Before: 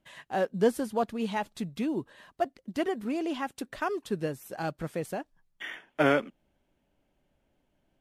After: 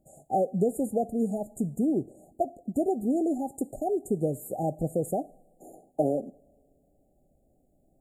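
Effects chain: compressor 6:1, threshold -28 dBFS, peak gain reduction 10 dB; brick-wall FIR band-stop 820–6700 Hz; two-slope reverb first 0.49 s, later 2.2 s, from -20 dB, DRR 15 dB; gain +6.5 dB

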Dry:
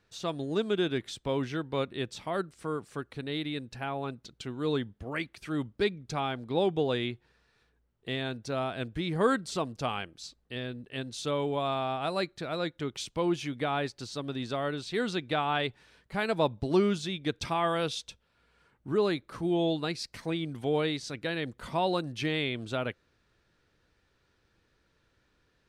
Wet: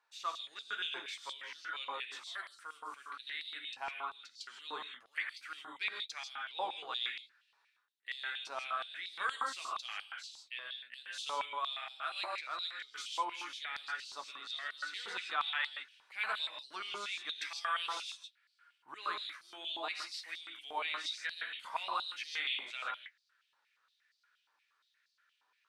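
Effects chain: non-linear reverb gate 0.18 s rising, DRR 2 dB; flange 0.16 Hz, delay 8.5 ms, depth 2.2 ms, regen -45%; stepped high-pass 8.5 Hz 930–4600 Hz; gain -5 dB

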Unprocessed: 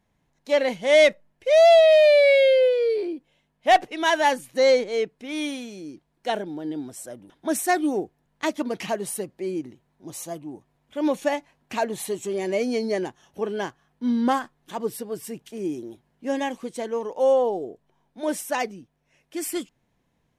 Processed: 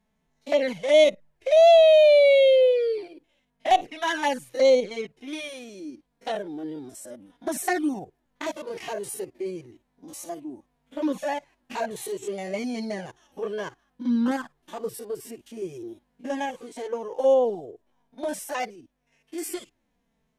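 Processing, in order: stepped spectrum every 50 ms; envelope flanger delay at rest 4.6 ms, full sweep at -16 dBFS; gain +1.5 dB

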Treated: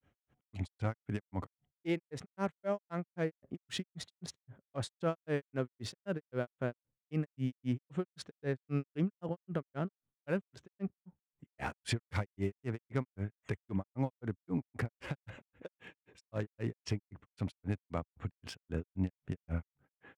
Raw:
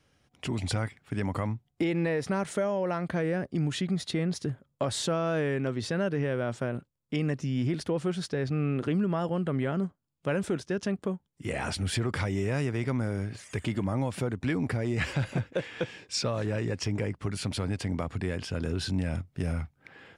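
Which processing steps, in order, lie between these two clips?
Wiener smoothing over 9 samples; grains 0.158 s, grains 3.8/s, pitch spread up and down by 0 st; gain -2 dB

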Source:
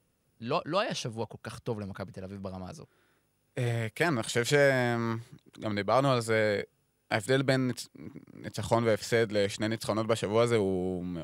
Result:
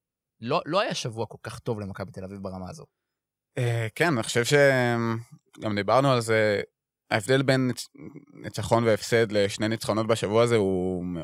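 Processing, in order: spectral noise reduction 21 dB; gain +4.5 dB

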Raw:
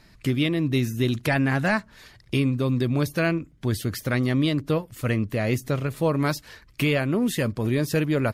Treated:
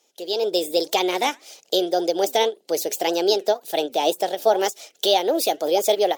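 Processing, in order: HPF 320 Hz 24 dB/oct; band shelf 1200 Hz -11.5 dB; AGC gain up to 15 dB; flange 1.4 Hz, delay 0.6 ms, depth 6.1 ms, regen +88%; speed mistake 33 rpm record played at 45 rpm; ending taper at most 390 dB/s

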